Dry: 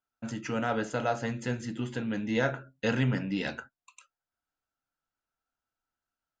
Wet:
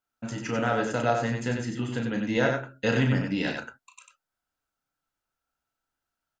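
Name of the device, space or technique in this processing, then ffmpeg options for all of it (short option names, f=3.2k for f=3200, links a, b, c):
slapback doubling: -filter_complex "[0:a]asplit=3[a][b][c];[b]adelay=34,volume=-7.5dB[d];[c]adelay=94,volume=-5dB[e];[a][d][e]amix=inputs=3:normalize=0,volume=2.5dB"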